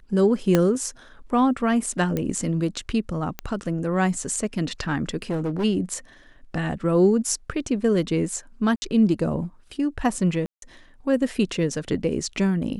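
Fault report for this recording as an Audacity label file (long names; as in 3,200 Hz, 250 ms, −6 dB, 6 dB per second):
0.550000	0.550000	click −5 dBFS
2.170000	2.170000	click −13 dBFS
3.390000	3.390000	click −13 dBFS
5.220000	5.650000	clipping −21.5 dBFS
8.760000	8.820000	drop-out 60 ms
10.460000	10.620000	drop-out 162 ms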